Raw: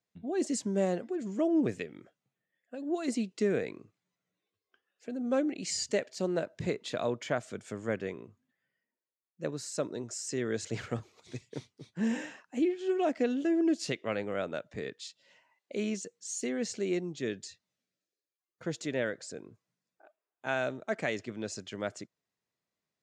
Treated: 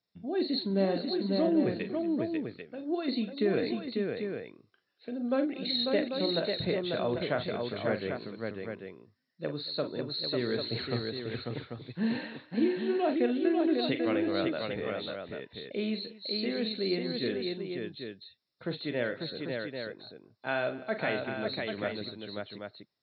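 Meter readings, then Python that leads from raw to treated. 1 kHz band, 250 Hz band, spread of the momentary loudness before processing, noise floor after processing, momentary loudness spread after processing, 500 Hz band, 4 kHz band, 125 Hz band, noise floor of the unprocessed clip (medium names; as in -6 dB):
+2.5 dB, +2.0 dB, 14 LU, -73 dBFS, 12 LU, +2.5 dB, +9.0 dB, +2.5 dB, under -85 dBFS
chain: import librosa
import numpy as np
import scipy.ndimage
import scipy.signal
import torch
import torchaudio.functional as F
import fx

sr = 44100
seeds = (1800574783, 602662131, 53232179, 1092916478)

y = fx.freq_compress(x, sr, knee_hz=3500.0, ratio=4.0)
y = fx.echo_multitap(y, sr, ms=(41, 52, 234, 545, 792), db=(-10.0, -17.5, -19.0, -4.0, -7.0))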